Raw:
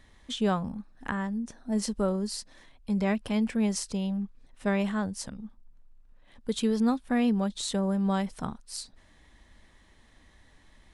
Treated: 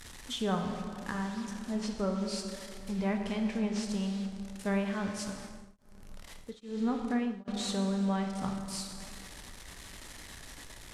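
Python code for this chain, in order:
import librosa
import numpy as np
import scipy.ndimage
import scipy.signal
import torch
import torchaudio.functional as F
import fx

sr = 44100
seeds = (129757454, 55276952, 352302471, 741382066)

y = fx.delta_mod(x, sr, bps=64000, step_db=-38.5)
y = fx.env_lowpass_down(y, sr, base_hz=2500.0, full_db=-21.5)
y = fx.high_shelf(y, sr, hz=4100.0, db=7.0)
y = fx.rev_plate(y, sr, seeds[0], rt60_s=2.5, hf_ratio=0.6, predelay_ms=0, drr_db=3.0)
y = fx.tremolo_abs(y, sr, hz=1.2, at=(5.36, 7.48))
y = y * 10.0 ** (-5.5 / 20.0)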